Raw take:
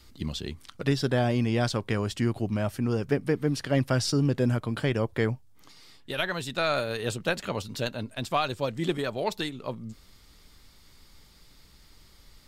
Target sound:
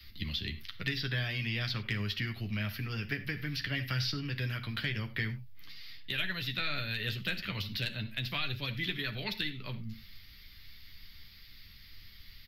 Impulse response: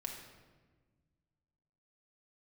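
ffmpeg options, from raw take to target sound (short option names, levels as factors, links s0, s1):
-filter_complex "[0:a]firequalizer=gain_entry='entry(100,0);entry(250,-9);entry(490,-15);entry(850,-15);entry(1900,5);entry(4800,2);entry(8100,-29);entry(12000,3)':delay=0.05:min_phase=1,acrossover=split=130|380|870|4400[s0][s1][s2][s3][s4];[s0]acompressor=threshold=0.00708:ratio=4[s5];[s1]acompressor=threshold=0.00794:ratio=4[s6];[s2]acompressor=threshold=0.00224:ratio=4[s7];[s3]acompressor=threshold=0.0158:ratio=4[s8];[s4]acompressor=threshold=0.00447:ratio=4[s9];[s5][s6][s7][s8][s9]amix=inputs=5:normalize=0,asoftclip=type=hard:threshold=0.075,asplit=2[s10][s11];[1:a]atrim=start_sample=2205,atrim=end_sample=4410,adelay=10[s12];[s11][s12]afir=irnorm=-1:irlink=0,volume=0.668[s13];[s10][s13]amix=inputs=2:normalize=0,volume=1.12"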